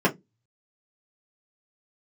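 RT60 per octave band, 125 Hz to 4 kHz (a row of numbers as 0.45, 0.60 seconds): 0.30, 0.30, 0.20, 0.15, 0.10, 0.10 seconds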